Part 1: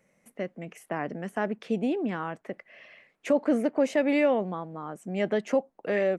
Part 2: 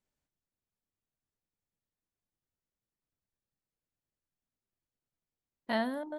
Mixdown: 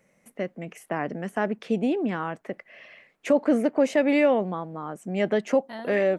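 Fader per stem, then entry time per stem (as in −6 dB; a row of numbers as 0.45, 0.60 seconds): +3.0, −7.0 decibels; 0.00, 0.00 seconds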